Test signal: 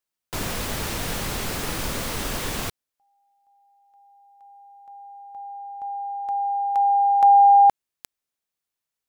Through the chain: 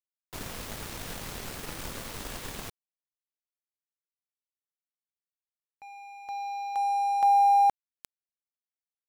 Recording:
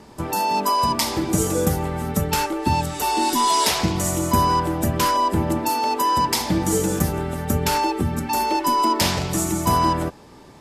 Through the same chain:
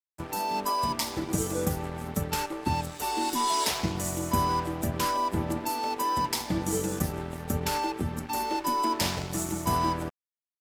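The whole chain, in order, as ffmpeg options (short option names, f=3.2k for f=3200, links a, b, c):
-af "aeval=exprs='sgn(val(0))*max(abs(val(0))-0.0224,0)':c=same,volume=-6.5dB"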